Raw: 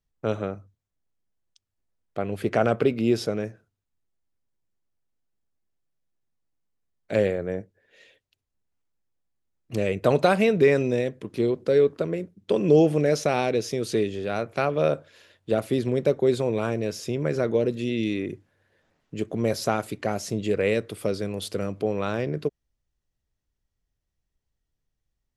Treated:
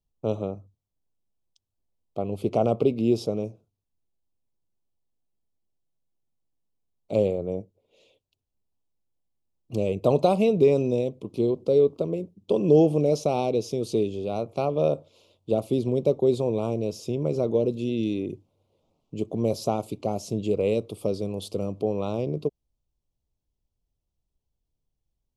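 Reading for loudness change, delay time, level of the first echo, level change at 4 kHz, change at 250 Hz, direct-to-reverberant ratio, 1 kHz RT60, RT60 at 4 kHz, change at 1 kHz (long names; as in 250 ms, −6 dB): −0.5 dB, no echo audible, no echo audible, −5.0 dB, 0.0 dB, no reverb audible, no reverb audible, no reverb audible, −2.0 dB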